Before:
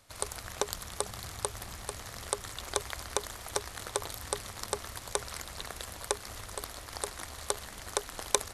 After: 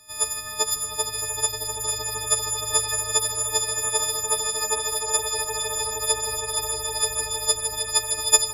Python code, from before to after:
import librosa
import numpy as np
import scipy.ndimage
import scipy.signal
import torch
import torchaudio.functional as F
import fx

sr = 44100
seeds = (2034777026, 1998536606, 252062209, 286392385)

y = fx.freq_snap(x, sr, grid_st=6)
y = fx.echo_swell(y, sr, ms=155, loudest=8, wet_db=-8.0)